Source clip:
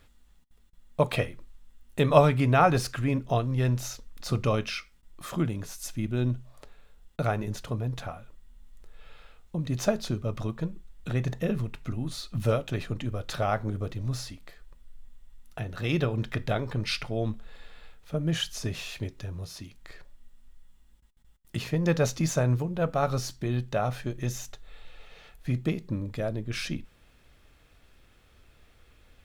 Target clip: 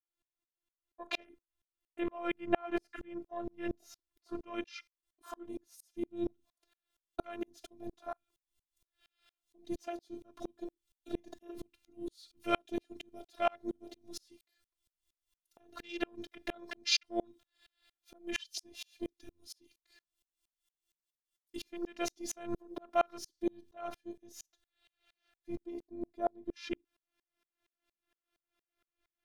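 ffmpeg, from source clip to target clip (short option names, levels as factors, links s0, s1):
-filter_complex "[0:a]afwtdn=0.0141,highpass=190,bandreject=f=7500:w=13,acrossover=split=2900[s0][s1];[s1]dynaudnorm=f=580:g=21:m=5.01[s2];[s0][s2]amix=inputs=2:normalize=0,alimiter=limit=0.2:level=0:latency=1:release=351,afftfilt=real='hypot(re,im)*cos(PI*b)':imag='0':win_size=512:overlap=0.75,aeval=exprs='val(0)*pow(10,-37*if(lt(mod(-4.3*n/s,1),2*abs(-4.3)/1000),1-mod(-4.3*n/s,1)/(2*abs(-4.3)/1000),(mod(-4.3*n/s,1)-2*abs(-4.3)/1000)/(1-2*abs(-4.3)/1000))/20)':c=same,volume=2.11"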